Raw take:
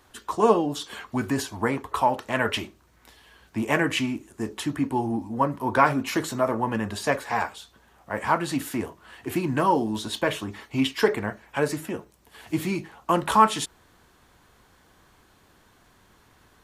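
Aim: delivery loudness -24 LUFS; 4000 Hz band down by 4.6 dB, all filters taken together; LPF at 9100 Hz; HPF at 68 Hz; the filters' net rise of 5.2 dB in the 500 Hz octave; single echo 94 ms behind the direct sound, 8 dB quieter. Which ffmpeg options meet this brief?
-af "highpass=68,lowpass=9.1k,equalizer=f=500:t=o:g=6.5,equalizer=f=4k:t=o:g=-6.5,aecho=1:1:94:0.398,volume=-1dB"

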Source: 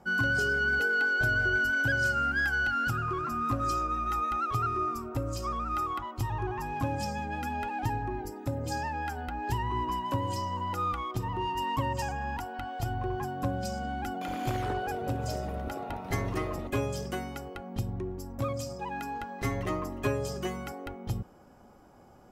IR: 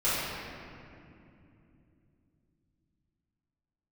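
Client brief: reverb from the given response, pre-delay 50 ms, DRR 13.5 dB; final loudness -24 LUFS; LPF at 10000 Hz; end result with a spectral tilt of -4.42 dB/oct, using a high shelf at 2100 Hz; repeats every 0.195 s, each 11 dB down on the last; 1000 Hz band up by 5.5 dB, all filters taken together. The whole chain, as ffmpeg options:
-filter_complex "[0:a]lowpass=10k,equalizer=f=1k:t=o:g=5.5,highshelf=f=2.1k:g=6.5,aecho=1:1:195|390|585:0.282|0.0789|0.0221,asplit=2[a][b];[1:a]atrim=start_sample=2205,adelay=50[c];[b][c]afir=irnorm=-1:irlink=0,volume=-26.5dB[d];[a][d]amix=inputs=2:normalize=0,volume=2.5dB"

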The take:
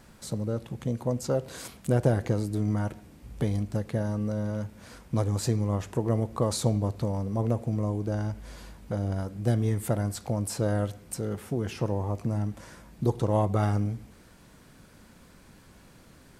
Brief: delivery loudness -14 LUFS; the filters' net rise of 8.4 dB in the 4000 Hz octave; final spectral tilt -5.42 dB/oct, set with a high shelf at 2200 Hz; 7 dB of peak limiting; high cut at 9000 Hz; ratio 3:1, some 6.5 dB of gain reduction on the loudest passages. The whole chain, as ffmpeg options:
-af "lowpass=9k,highshelf=f=2.2k:g=5,equalizer=f=4k:t=o:g=5.5,acompressor=threshold=-27dB:ratio=3,volume=20.5dB,alimiter=limit=-2dB:level=0:latency=1"

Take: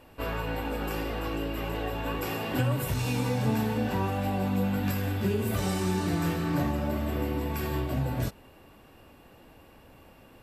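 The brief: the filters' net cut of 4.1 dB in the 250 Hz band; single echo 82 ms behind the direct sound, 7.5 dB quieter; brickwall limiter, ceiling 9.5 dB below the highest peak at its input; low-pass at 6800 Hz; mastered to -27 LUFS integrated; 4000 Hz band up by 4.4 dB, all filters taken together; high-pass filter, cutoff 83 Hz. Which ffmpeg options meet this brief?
-af "highpass=83,lowpass=6.8k,equalizer=f=250:t=o:g=-5.5,equalizer=f=4k:t=o:g=6.5,alimiter=level_in=1.5dB:limit=-24dB:level=0:latency=1,volume=-1.5dB,aecho=1:1:82:0.422,volume=6dB"

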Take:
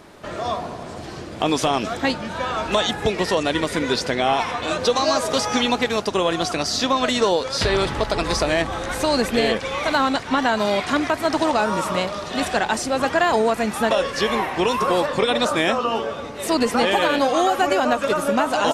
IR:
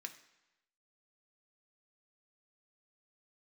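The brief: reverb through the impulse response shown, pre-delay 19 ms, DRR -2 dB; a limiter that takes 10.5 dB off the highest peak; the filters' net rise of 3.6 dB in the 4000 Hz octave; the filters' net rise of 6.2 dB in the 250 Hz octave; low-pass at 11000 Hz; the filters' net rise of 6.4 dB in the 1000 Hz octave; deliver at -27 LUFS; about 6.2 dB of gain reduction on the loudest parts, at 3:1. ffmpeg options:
-filter_complex "[0:a]lowpass=11k,equalizer=f=250:t=o:g=7,equalizer=f=1k:t=o:g=7.5,equalizer=f=4k:t=o:g=4,acompressor=threshold=-18dB:ratio=3,alimiter=limit=-15dB:level=0:latency=1,asplit=2[a][b];[1:a]atrim=start_sample=2205,adelay=19[c];[b][c]afir=irnorm=-1:irlink=0,volume=5dB[d];[a][d]amix=inputs=2:normalize=0,volume=-5.5dB"

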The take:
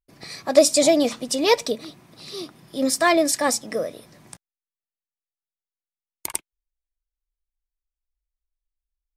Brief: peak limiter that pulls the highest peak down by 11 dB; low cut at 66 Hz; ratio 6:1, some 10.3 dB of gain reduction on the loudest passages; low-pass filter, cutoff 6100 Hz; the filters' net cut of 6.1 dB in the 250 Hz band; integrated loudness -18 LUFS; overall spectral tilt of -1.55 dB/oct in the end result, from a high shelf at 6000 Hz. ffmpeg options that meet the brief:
-af "highpass=66,lowpass=6.1k,equalizer=f=250:t=o:g=-8,highshelf=f=6k:g=7.5,acompressor=threshold=-20dB:ratio=6,volume=12dB,alimiter=limit=-7dB:level=0:latency=1"

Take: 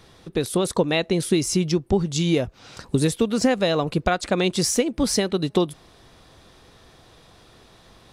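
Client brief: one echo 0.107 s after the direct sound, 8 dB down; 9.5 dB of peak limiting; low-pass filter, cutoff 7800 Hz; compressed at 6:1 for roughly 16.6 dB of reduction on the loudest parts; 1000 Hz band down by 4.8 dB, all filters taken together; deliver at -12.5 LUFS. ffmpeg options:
-af "lowpass=7.8k,equalizer=f=1k:t=o:g=-7.5,acompressor=threshold=-35dB:ratio=6,alimiter=level_in=6.5dB:limit=-24dB:level=0:latency=1,volume=-6.5dB,aecho=1:1:107:0.398,volume=27.5dB"

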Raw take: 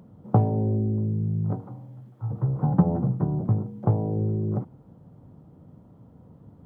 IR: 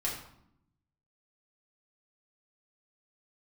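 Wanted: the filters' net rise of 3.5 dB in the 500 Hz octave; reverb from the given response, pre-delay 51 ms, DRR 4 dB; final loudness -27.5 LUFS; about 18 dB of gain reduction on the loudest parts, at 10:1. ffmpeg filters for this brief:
-filter_complex "[0:a]equalizer=f=500:t=o:g=4.5,acompressor=threshold=-32dB:ratio=10,asplit=2[a][b];[1:a]atrim=start_sample=2205,adelay=51[c];[b][c]afir=irnorm=-1:irlink=0,volume=-8.5dB[d];[a][d]amix=inputs=2:normalize=0,volume=9.5dB"

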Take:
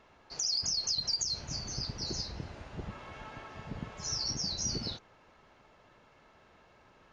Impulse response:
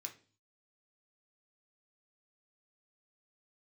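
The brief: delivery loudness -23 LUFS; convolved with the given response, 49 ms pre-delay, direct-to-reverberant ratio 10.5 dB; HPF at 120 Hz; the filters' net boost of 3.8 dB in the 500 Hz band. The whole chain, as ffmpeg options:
-filter_complex "[0:a]highpass=120,equalizer=f=500:t=o:g=5,asplit=2[a][b];[1:a]atrim=start_sample=2205,adelay=49[c];[b][c]afir=irnorm=-1:irlink=0,volume=-6.5dB[d];[a][d]amix=inputs=2:normalize=0,volume=10.5dB"

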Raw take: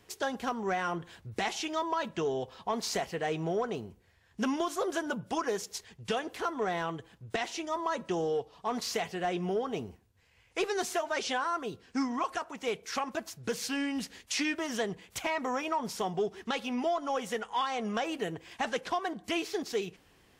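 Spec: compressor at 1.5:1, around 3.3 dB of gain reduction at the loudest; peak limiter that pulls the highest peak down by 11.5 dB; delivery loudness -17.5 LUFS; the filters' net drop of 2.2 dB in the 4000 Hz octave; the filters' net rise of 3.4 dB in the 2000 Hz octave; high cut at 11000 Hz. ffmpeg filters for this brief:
-af "lowpass=11k,equalizer=f=2k:t=o:g=5.5,equalizer=f=4k:t=o:g=-5.5,acompressor=threshold=-35dB:ratio=1.5,volume=23.5dB,alimiter=limit=-9dB:level=0:latency=1"

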